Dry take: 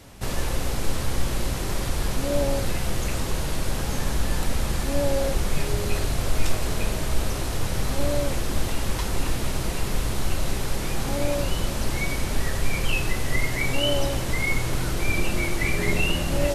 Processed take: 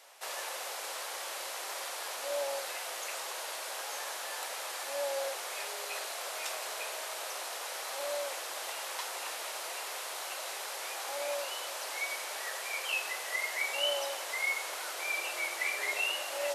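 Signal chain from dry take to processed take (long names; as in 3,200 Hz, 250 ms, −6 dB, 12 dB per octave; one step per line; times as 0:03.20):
inverse Chebyshev high-pass filter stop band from 170 Hz, stop band 60 dB
level −5 dB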